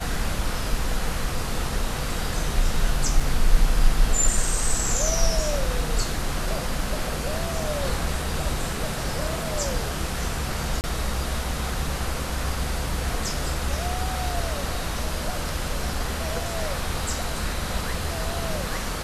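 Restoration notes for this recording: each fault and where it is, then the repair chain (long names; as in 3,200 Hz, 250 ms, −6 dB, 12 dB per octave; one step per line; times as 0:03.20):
0:03.20: drop-out 4.2 ms
0:10.81–0:10.84: drop-out 29 ms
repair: repair the gap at 0:03.20, 4.2 ms
repair the gap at 0:10.81, 29 ms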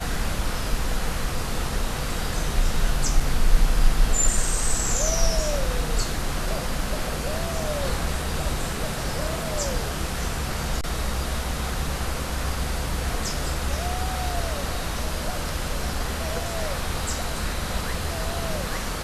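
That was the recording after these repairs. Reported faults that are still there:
none of them is left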